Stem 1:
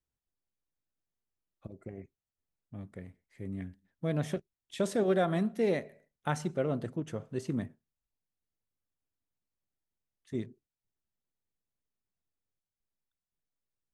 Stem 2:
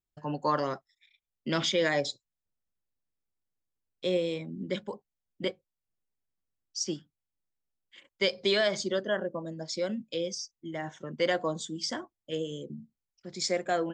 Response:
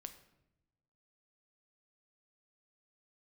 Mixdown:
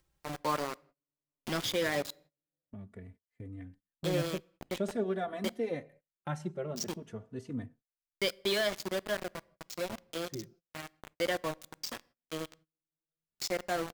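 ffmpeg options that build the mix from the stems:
-filter_complex "[0:a]highshelf=f=4000:g=-5,asplit=2[s0][s1];[s1]adelay=3.3,afreqshift=0.48[s2];[s0][s2]amix=inputs=2:normalize=1,volume=0.75[s3];[1:a]aeval=exprs='val(0)*gte(abs(val(0)),0.0335)':c=same,volume=0.531,asplit=2[s4][s5];[s5]volume=0.355[s6];[2:a]atrim=start_sample=2205[s7];[s6][s7]afir=irnorm=-1:irlink=0[s8];[s3][s4][s8]amix=inputs=3:normalize=0,agate=range=0.0398:threshold=0.00126:ratio=16:detection=peak,acompressor=mode=upward:threshold=0.00891:ratio=2.5"

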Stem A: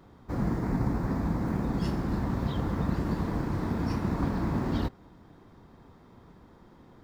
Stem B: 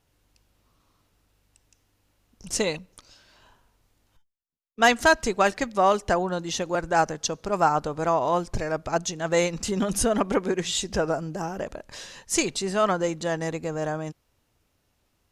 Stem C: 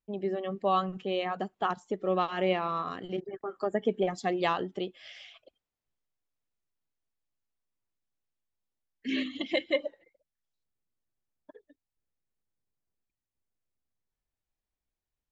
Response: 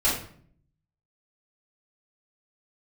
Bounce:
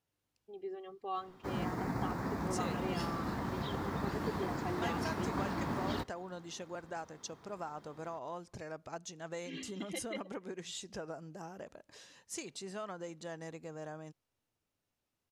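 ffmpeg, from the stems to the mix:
-filter_complex "[0:a]highpass=70,lowshelf=f=450:g=-10.5,adelay=1150,volume=1[s0];[1:a]highpass=95,acompressor=threshold=0.0708:ratio=6,volume=0.168[s1];[2:a]aecho=1:1:2.5:0.8,adelay=400,volume=0.178[s2];[s0][s1][s2]amix=inputs=3:normalize=0"

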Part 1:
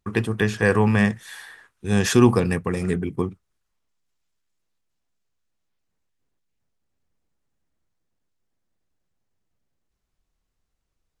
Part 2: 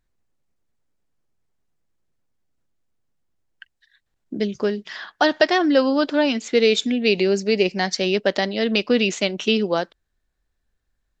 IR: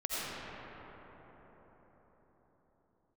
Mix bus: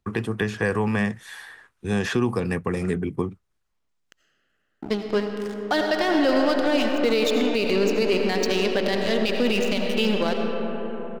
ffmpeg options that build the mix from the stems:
-filter_complex "[0:a]highshelf=f=4500:g=-5,acrossover=split=180|4000[s0][s1][s2];[s0]acompressor=threshold=0.0251:ratio=4[s3];[s1]acompressor=threshold=0.0794:ratio=4[s4];[s2]acompressor=threshold=0.00562:ratio=4[s5];[s3][s4][s5]amix=inputs=3:normalize=0,volume=1.12[s6];[1:a]aeval=exprs='sgn(val(0))*max(abs(val(0))-0.0316,0)':c=same,adelay=500,volume=0.841,asplit=2[s7][s8];[s8]volume=0.355[s9];[2:a]atrim=start_sample=2205[s10];[s9][s10]afir=irnorm=-1:irlink=0[s11];[s6][s7][s11]amix=inputs=3:normalize=0,alimiter=limit=0.266:level=0:latency=1:release=22"

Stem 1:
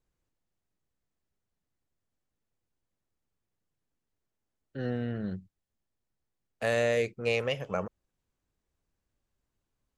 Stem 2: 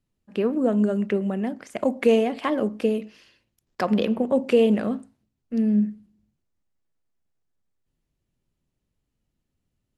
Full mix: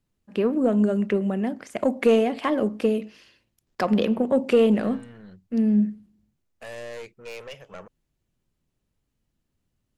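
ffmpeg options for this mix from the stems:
-filter_complex "[0:a]lowshelf=f=440:g=-8,aeval=exprs='(tanh(35.5*val(0)+0.45)-tanh(0.45))/35.5':c=same,volume=0.794[s0];[1:a]acontrast=67,volume=0.531[s1];[s0][s1]amix=inputs=2:normalize=0"

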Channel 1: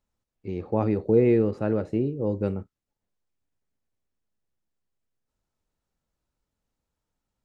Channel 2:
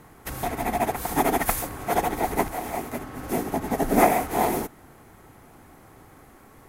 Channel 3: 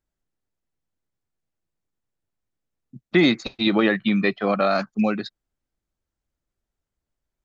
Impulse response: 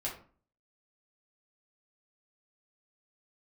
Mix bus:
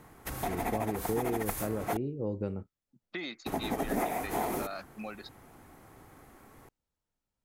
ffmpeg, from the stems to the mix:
-filter_complex "[0:a]volume=0.531[s0];[1:a]volume=0.596,asplit=3[s1][s2][s3];[s1]atrim=end=1.97,asetpts=PTS-STARTPTS,afade=t=out:st=1.966:d=0.004:c=hsin[s4];[s2]atrim=start=1.97:end=3.46,asetpts=PTS-STARTPTS,volume=0[s5];[s3]atrim=start=3.46,asetpts=PTS-STARTPTS,afade=t=in:d=0.004:c=hsin[s6];[s4][s5][s6]concat=n=3:v=0:a=1[s7];[2:a]highpass=f=640:p=1,acompressor=threshold=0.0562:ratio=3,volume=0.266[s8];[s0][s7][s8]amix=inputs=3:normalize=0,acompressor=threshold=0.0398:ratio=6"

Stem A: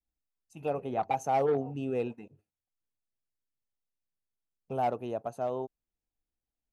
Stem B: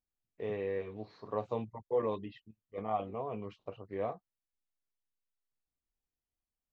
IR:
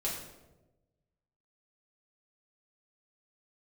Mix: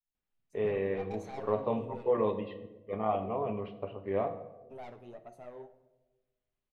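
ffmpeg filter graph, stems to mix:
-filter_complex "[0:a]aeval=exprs='(tanh(28.2*val(0)+0.25)-tanh(0.25))/28.2':c=same,flanger=delay=4:depth=6.4:regen=34:speed=1.7:shape=triangular,volume=0.299,asplit=2[s0][s1];[s1]volume=0.316[s2];[1:a]lowpass=f=3500:w=0.5412,lowpass=f=3500:w=1.3066,adelay=150,volume=1.19,asplit=2[s3][s4];[s4]volume=0.422[s5];[2:a]atrim=start_sample=2205[s6];[s2][s5]amix=inputs=2:normalize=0[s7];[s7][s6]afir=irnorm=-1:irlink=0[s8];[s0][s3][s8]amix=inputs=3:normalize=0"

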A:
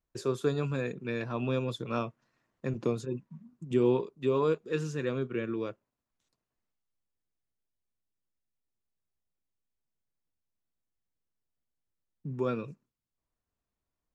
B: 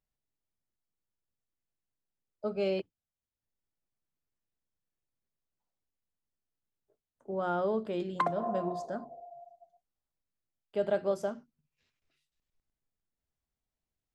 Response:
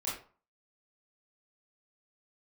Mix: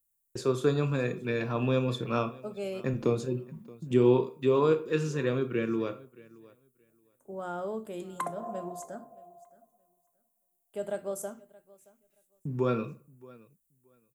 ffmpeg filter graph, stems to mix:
-filter_complex "[0:a]agate=range=0.0224:threshold=0.00447:ratio=3:detection=peak,adelay=200,volume=1.19,asplit=3[s0][s1][s2];[s1]volume=0.266[s3];[s2]volume=0.0891[s4];[1:a]aexciter=amount=13:drive=5.2:freq=7000,volume=0.531,asplit=3[s5][s6][s7];[s6]volume=0.133[s8];[s7]volume=0.0794[s9];[2:a]atrim=start_sample=2205[s10];[s3][s8]amix=inputs=2:normalize=0[s11];[s11][s10]afir=irnorm=-1:irlink=0[s12];[s4][s9]amix=inputs=2:normalize=0,aecho=0:1:624|1248|1872:1|0.18|0.0324[s13];[s0][s5][s12][s13]amix=inputs=4:normalize=0"

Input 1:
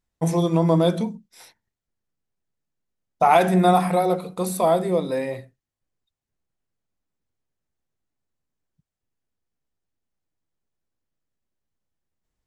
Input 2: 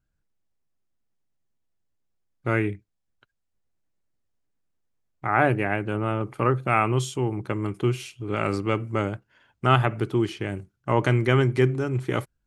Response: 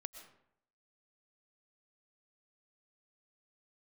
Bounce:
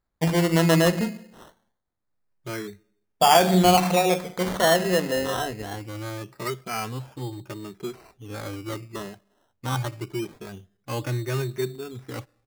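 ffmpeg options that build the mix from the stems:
-filter_complex "[0:a]volume=0.708,asplit=2[s0][s1];[s1]volume=0.562[s2];[1:a]acrossover=split=2800[s3][s4];[s4]acompressor=threshold=0.00708:ratio=4:attack=1:release=60[s5];[s3][s5]amix=inputs=2:normalize=0,asplit=2[s6][s7];[s7]adelay=2.7,afreqshift=0.78[s8];[s6][s8]amix=inputs=2:normalize=1,volume=0.501,asplit=2[s9][s10];[s10]volume=0.119[s11];[2:a]atrim=start_sample=2205[s12];[s2][s11]amix=inputs=2:normalize=0[s13];[s13][s12]afir=irnorm=-1:irlink=0[s14];[s0][s9][s14]amix=inputs=3:normalize=0,acrusher=samples=15:mix=1:aa=0.000001:lfo=1:lforange=9:lforate=0.24"

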